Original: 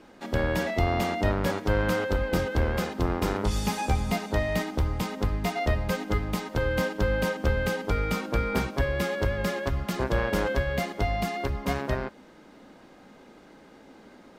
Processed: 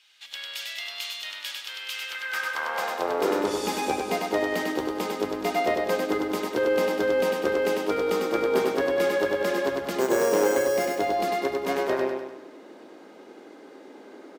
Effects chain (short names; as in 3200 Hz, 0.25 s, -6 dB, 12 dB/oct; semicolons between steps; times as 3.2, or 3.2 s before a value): high-pass sweep 3100 Hz -> 360 Hz, 1.89–3.35; 10–10.88 careless resampling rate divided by 6×, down filtered, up hold; feedback echo 99 ms, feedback 49%, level -3.5 dB